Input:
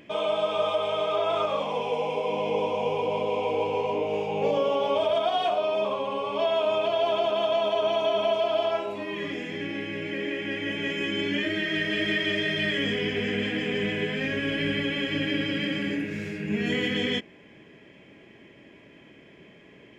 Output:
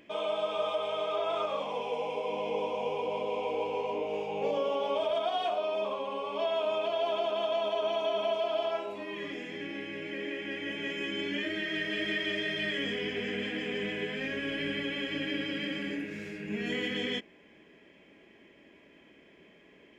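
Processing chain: bell 120 Hz -11.5 dB 0.77 oct; gain -5.5 dB

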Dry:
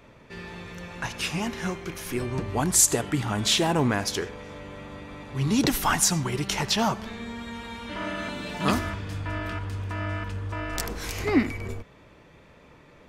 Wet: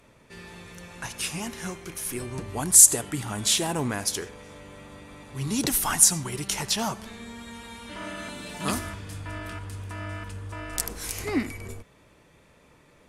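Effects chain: bell 10000 Hz +15 dB 1.1 oct; gain -5 dB

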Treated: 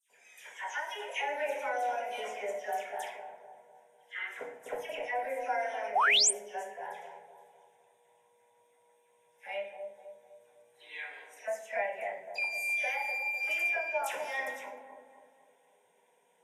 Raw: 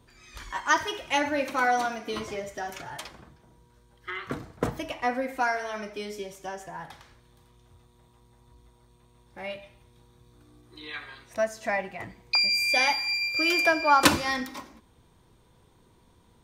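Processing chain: HPF 320 Hz 24 dB/oct; compressor 16:1, threshold -27 dBFS, peak gain reduction 14.5 dB; fixed phaser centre 1200 Hz, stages 6; dispersion lows, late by 0.103 s, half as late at 2300 Hz; on a send: dark delay 0.252 s, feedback 46%, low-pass 770 Hz, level -4.5 dB; on the sum: shoebox room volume 37 m³, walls mixed, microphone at 0.44 m; painted sound rise, 5.95–6.31, 660–9500 Hz -22 dBFS; gain -2.5 dB; Vorbis 48 kbps 32000 Hz

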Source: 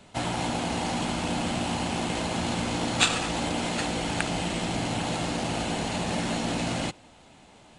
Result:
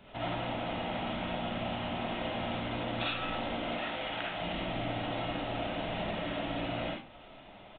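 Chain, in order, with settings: 3.75–4.41 low shelf 350 Hz -12 dB; compressor 2.5:1, threshold -37 dBFS, peak gain reduction 14 dB; reverb RT60 0.35 s, pre-delay 15 ms, DRR -5.5 dB; downsampling 8000 Hz; gain -4 dB

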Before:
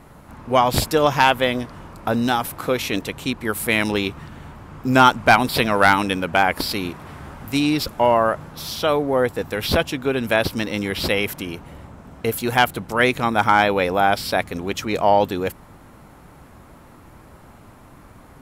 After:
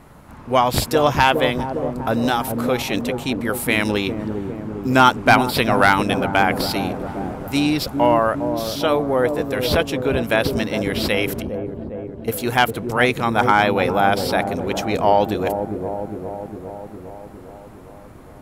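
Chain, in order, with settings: 11.42–12.28 passive tone stack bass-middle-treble 6-0-2; on a send: dark delay 0.406 s, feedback 66%, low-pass 540 Hz, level -3.5 dB

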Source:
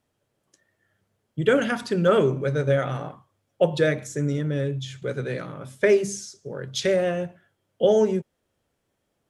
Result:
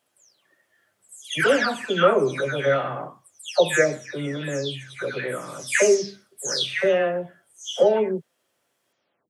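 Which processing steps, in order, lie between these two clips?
spectral delay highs early, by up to 0.374 s; HPF 830 Hz 6 dB/oct; gain +8 dB

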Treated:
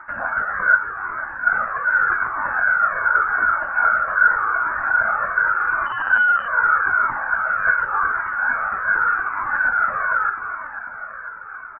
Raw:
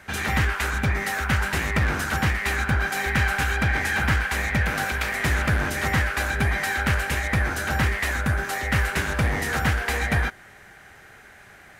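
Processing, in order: limiter -19.5 dBFS, peak gain reduction 9.5 dB; 0.76–1.47 tube stage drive 33 dB, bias 0.7; phaser 0.26 Hz, delay 3.4 ms, feedback 45%; resonant high-pass 1500 Hz, resonance Q 8.2; feedback echo 0.495 s, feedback 54%, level -8 dB; 5.86–6.48 LPC vocoder at 8 kHz pitch kept; inverted band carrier 3000 Hz; cascading flanger falling 0.85 Hz; gain +1.5 dB

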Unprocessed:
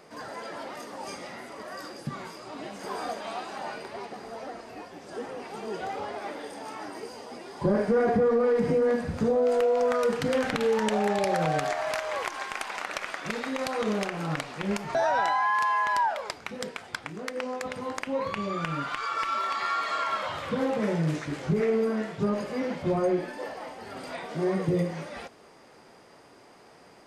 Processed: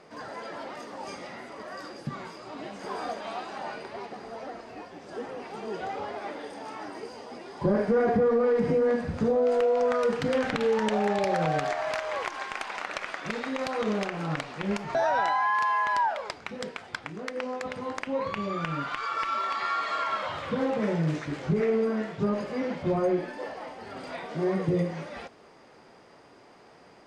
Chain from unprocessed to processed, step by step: air absorption 58 m

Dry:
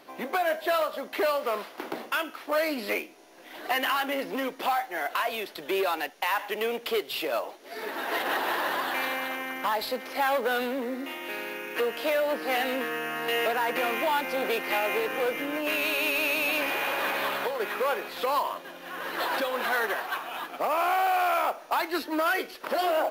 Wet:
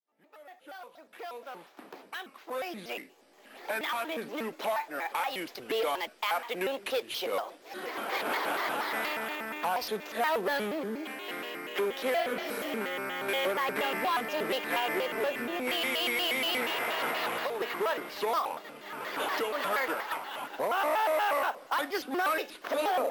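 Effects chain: opening faded in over 5.59 s; spectral repair 12.21–12.74, 440–4400 Hz both; shaped vibrato square 4.2 Hz, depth 250 cents; gain -3 dB

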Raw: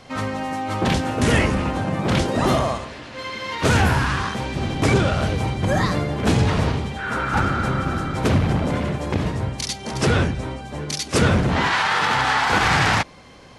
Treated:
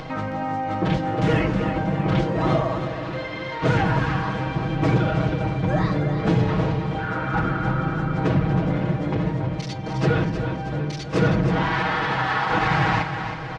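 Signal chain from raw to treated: high shelf 4000 Hz +9 dB; comb 6.3 ms, depth 95%; upward compressor, threshold -17 dBFS; tape spacing loss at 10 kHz 36 dB; feedback echo 0.318 s, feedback 51%, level -8.5 dB; gain -3 dB

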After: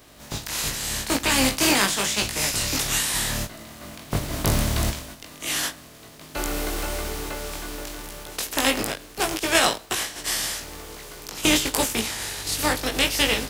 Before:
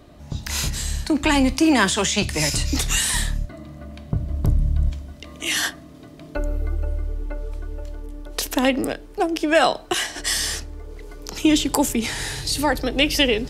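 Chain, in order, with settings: spectral contrast lowered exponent 0.45; chorus 0.83 Hz, delay 18 ms, depth 2 ms; ending taper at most 410 dB/s

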